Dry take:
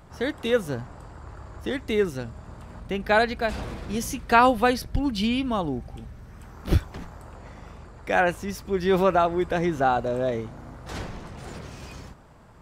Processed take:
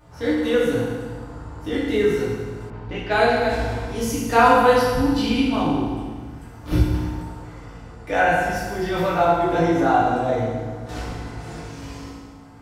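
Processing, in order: chorus 0.28 Hz, delay 16.5 ms, depth 2.6 ms; FDN reverb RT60 1.6 s, low-frequency decay 1.1×, high-frequency decay 0.85×, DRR -7 dB; 2.70–3.18 s: level-controlled noise filter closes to 2 kHz, open at -19 dBFS; trim -1 dB

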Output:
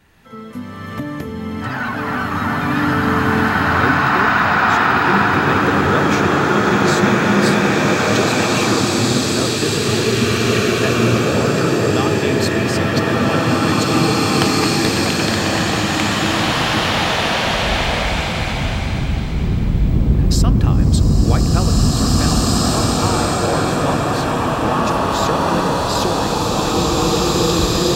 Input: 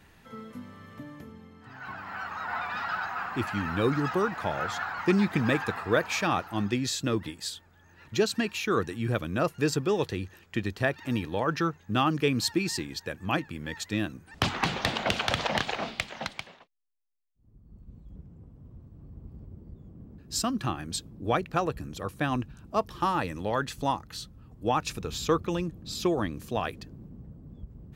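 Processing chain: recorder AGC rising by 20 dB/s; swelling reverb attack 2320 ms, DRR -10 dB; trim +1.5 dB

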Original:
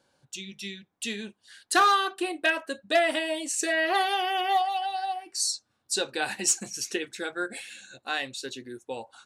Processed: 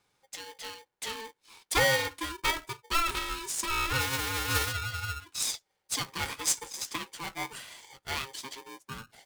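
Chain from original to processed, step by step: 4.00–4.71 s: formants flattened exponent 0.1; peaking EQ 430 Hz -5 dB 0.94 oct; polarity switched at an audio rate 670 Hz; trim -3.5 dB

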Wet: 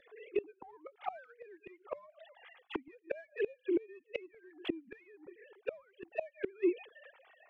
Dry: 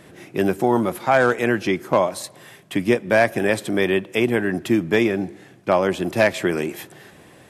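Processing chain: formants replaced by sine waves; in parallel at -11 dB: saturation -21.5 dBFS, distortion -7 dB; on the sum: inverted gate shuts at -16 dBFS, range -28 dB; touch-sensitive flanger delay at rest 3.2 ms, full sweep at -26.5 dBFS; trim -4 dB

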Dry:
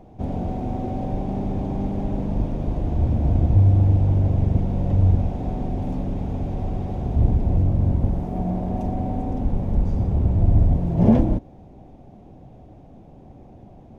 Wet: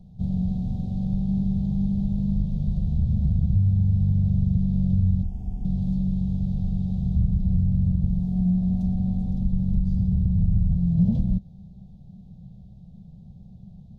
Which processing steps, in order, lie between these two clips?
FFT filter 120 Hz 0 dB, 190 Hz +8 dB, 290 Hz -25 dB, 450 Hz -17 dB, 860 Hz -20 dB, 1.2 kHz -29 dB, 2 kHz -29 dB, 4 kHz +2 dB, 5.9 kHz -6 dB; compression 3:1, threshold -18 dBFS, peak gain reduction 7.5 dB; 5.23–5.65 s: static phaser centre 810 Hz, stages 8

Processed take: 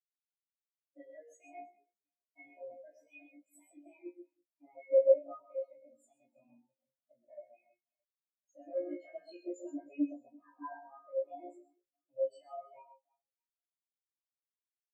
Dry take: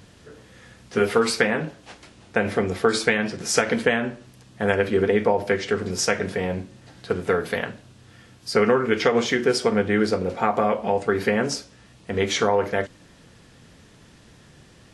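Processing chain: rotating-head pitch shifter +5.5 st; treble shelf 6.9 kHz +9.5 dB; peak limiter -13.5 dBFS, peak gain reduction 11 dB; feedback comb 59 Hz, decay 0.46 s, harmonics all, mix 100%; reverse bouncing-ball echo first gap 130 ms, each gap 1.5×, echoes 5; spectral contrast expander 4:1; trim +5 dB

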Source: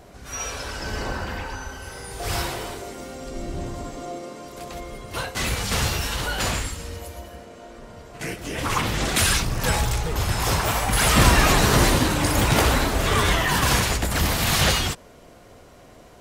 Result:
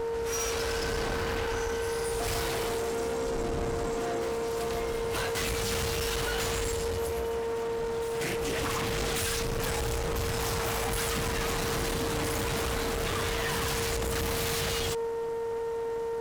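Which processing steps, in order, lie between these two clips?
compression, threshold -25 dBFS, peak gain reduction 14 dB; whistle 460 Hz -31 dBFS; valve stage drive 35 dB, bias 0.75; on a send: reverse echo 1139 ms -14.5 dB; on the sum: trim +6.5 dB

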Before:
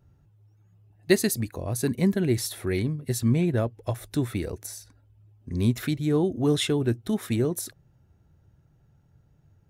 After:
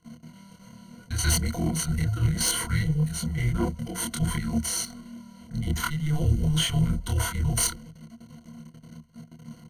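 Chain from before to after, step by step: CVSD coder 64 kbps; frequency shift -300 Hz; slow attack 157 ms; level held to a coarse grid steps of 12 dB; bass shelf 94 Hz -3.5 dB; doubling 26 ms -2 dB; reverse; compression 5:1, threshold -37 dBFS, peak gain reduction 16 dB; reverse; waveshaping leveller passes 2; rippled EQ curve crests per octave 1.9, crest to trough 17 dB; trim +7 dB

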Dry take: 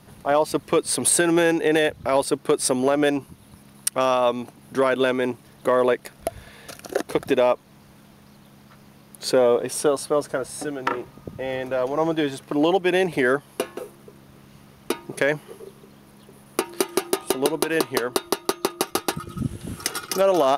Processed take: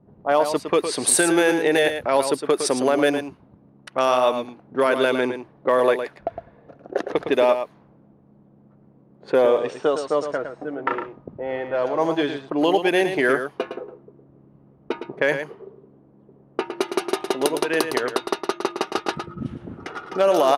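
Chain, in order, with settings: 9.47–10.71 s: Chebyshev low-pass 8.8 kHz, order 6; level-controlled noise filter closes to 410 Hz, open at -16 dBFS; bass shelf 150 Hz -11.5 dB; delay 110 ms -8.5 dB; trim +1.5 dB

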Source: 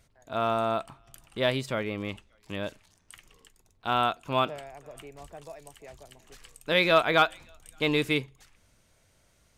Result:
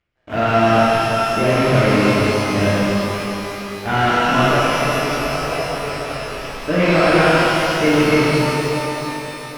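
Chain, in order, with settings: CVSD coder 16 kbps; peak limiter -21 dBFS, peak gain reduction 9.5 dB; peaking EQ 210 Hz +3 dB 2 oct; waveshaping leveller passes 2; gate with hold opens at -38 dBFS; in parallel at +0.5 dB: compression, threshold -26 dBFS, peak gain reduction 4 dB; on the sum: pitch-shifted reverb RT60 3.7 s, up +12 st, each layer -8 dB, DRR -10 dB; trim -2.5 dB

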